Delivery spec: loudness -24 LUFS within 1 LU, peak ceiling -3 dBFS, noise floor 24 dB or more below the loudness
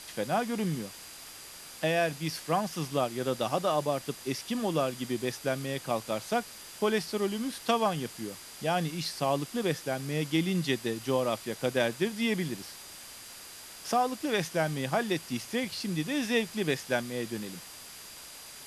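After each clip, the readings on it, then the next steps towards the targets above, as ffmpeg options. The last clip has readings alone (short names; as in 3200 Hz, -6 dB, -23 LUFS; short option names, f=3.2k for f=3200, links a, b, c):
steady tone 4800 Hz; tone level -53 dBFS; noise floor -47 dBFS; noise floor target -55 dBFS; loudness -31.0 LUFS; peak -12.0 dBFS; loudness target -24.0 LUFS
-> -af "bandreject=f=4.8k:w=30"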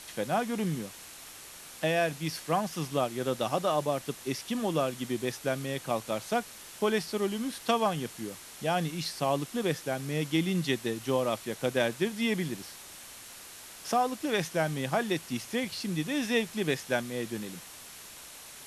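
steady tone none; noise floor -48 dBFS; noise floor target -55 dBFS
-> -af "afftdn=nr=7:nf=-48"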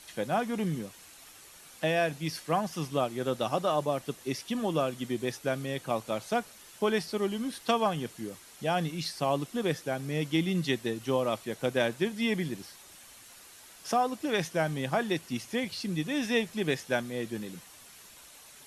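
noise floor -53 dBFS; noise floor target -55 dBFS
-> -af "afftdn=nr=6:nf=-53"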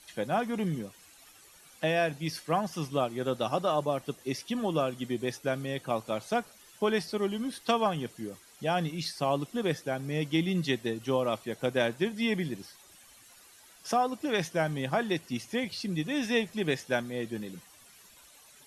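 noise floor -56 dBFS; loudness -31.0 LUFS; peak -12.5 dBFS; loudness target -24.0 LUFS
-> -af "volume=7dB"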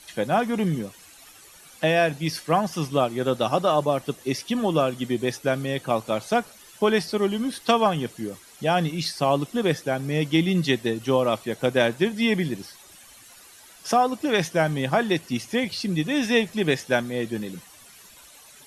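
loudness -24.0 LUFS; peak -5.5 dBFS; noise floor -49 dBFS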